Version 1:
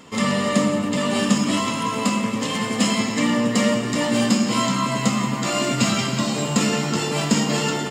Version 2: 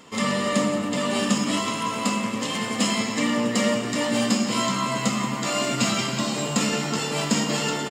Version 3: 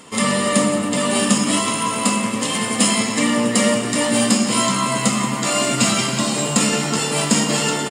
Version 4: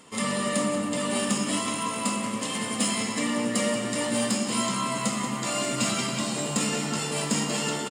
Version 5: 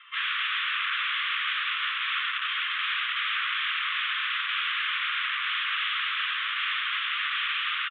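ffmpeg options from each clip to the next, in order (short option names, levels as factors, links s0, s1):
-filter_complex "[0:a]equalizer=f=78:t=o:w=3:g=-5,bandreject=f=88.05:t=h:w=4,bandreject=f=176.1:t=h:w=4,bandreject=f=264.15:t=h:w=4,bandreject=f=352.2:t=h:w=4,bandreject=f=440.25:t=h:w=4,bandreject=f=528.3:t=h:w=4,bandreject=f=616.35:t=h:w=4,bandreject=f=704.4:t=h:w=4,bandreject=f=792.45:t=h:w=4,bandreject=f=880.5:t=h:w=4,bandreject=f=968.55:t=h:w=4,bandreject=f=1056.6:t=h:w=4,bandreject=f=1144.65:t=h:w=4,bandreject=f=1232.7:t=h:w=4,bandreject=f=1320.75:t=h:w=4,bandreject=f=1408.8:t=h:w=4,bandreject=f=1496.85:t=h:w=4,bandreject=f=1584.9:t=h:w=4,bandreject=f=1672.95:t=h:w=4,bandreject=f=1761:t=h:w=4,bandreject=f=1849.05:t=h:w=4,bandreject=f=1937.1:t=h:w=4,bandreject=f=2025.15:t=h:w=4,bandreject=f=2113.2:t=h:w=4,bandreject=f=2201.25:t=h:w=4,bandreject=f=2289.3:t=h:w=4,bandreject=f=2377.35:t=h:w=4,bandreject=f=2465.4:t=h:w=4,bandreject=f=2553.45:t=h:w=4,bandreject=f=2641.5:t=h:w=4,bandreject=f=2729.55:t=h:w=4,bandreject=f=2817.6:t=h:w=4,asplit=4[s0][s1][s2][s3];[s1]adelay=178,afreqshift=120,volume=0.1[s4];[s2]adelay=356,afreqshift=240,volume=0.0442[s5];[s3]adelay=534,afreqshift=360,volume=0.0193[s6];[s0][s4][s5][s6]amix=inputs=4:normalize=0,volume=0.841"
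-af "equalizer=f=9200:t=o:w=0.33:g=13.5,volume=1.78"
-filter_complex "[0:a]asoftclip=type=tanh:threshold=0.631,asplit=2[s0][s1];[s1]adelay=186.6,volume=0.355,highshelf=f=4000:g=-4.2[s2];[s0][s2]amix=inputs=2:normalize=0,volume=0.355"
-af "aresample=11025,aeval=exprs='(mod(23.7*val(0)+1,2)-1)/23.7':c=same,aresample=44100,asuperpass=centerf=2000:order=20:qfactor=0.83,volume=2.24"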